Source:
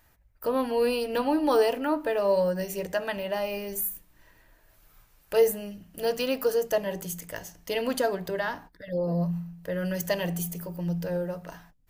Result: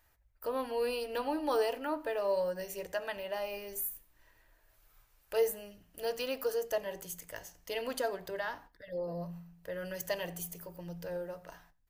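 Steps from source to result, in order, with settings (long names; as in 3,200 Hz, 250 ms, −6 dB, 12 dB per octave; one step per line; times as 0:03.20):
parametric band 190 Hz −9.5 dB 1.2 octaves
repeating echo 88 ms, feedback 23%, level −24 dB
level −6.5 dB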